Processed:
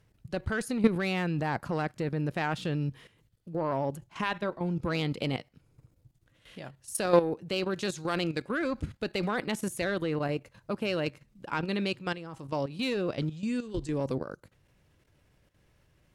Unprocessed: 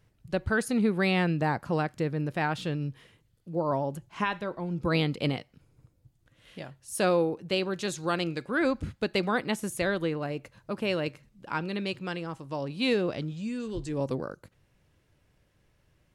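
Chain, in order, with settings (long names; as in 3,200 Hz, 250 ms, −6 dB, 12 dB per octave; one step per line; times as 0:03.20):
harmonic generator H 2 −20 dB, 3 −22 dB, 6 −33 dB, 8 −32 dB, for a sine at −14.5 dBFS
output level in coarse steps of 12 dB
level +6.5 dB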